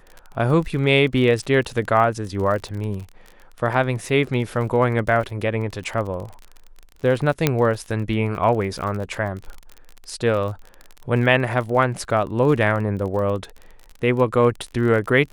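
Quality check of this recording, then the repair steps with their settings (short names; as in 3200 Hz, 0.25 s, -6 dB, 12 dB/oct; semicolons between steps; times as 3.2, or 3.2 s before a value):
crackle 36/s -29 dBFS
7.47 pop -2 dBFS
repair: de-click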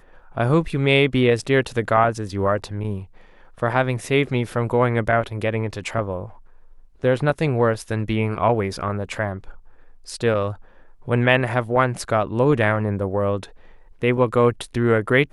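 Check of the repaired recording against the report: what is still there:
none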